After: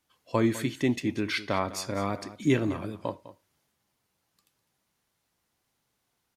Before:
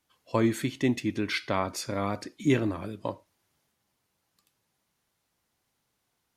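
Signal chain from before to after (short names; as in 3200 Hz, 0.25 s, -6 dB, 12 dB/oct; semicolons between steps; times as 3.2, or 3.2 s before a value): echo 0.203 s -15.5 dB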